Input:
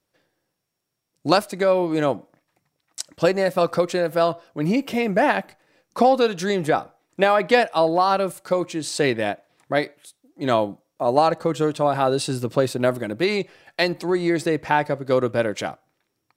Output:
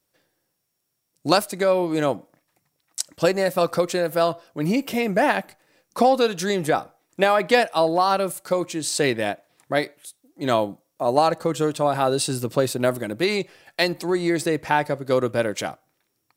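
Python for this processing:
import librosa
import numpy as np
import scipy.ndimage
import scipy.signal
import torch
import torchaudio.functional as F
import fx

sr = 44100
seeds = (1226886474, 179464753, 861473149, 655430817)

y = fx.high_shelf(x, sr, hz=7000.0, db=10.5)
y = F.gain(torch.from_numpy(y), -1.0).numpy()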